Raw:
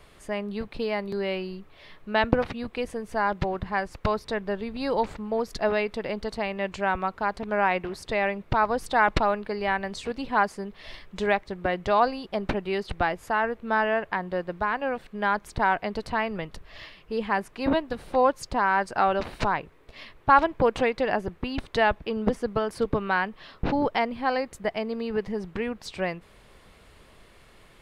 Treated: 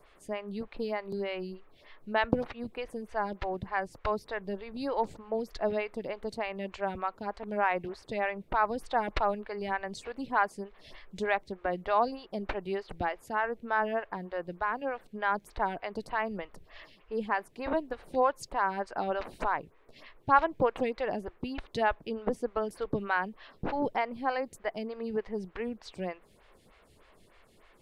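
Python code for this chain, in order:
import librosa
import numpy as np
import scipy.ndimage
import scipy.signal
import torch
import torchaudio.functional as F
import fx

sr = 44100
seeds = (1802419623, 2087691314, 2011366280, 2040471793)

y = fx.stagger_phaser(x, sr, hz=3.3)
y = F.gain(torch.from_numpy(y), -3.5).numpy()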